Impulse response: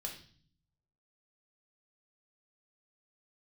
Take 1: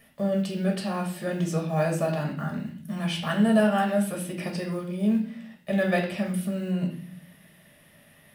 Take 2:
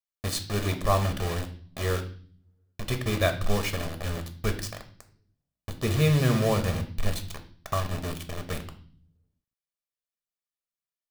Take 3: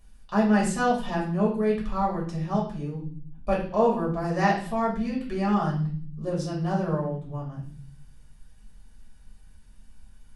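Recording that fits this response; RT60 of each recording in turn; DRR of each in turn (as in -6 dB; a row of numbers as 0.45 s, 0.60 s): 1; 0.45 s, 0.45 s, 0.45 s; 0.5 dB, 6.0 dB, -4.5 dB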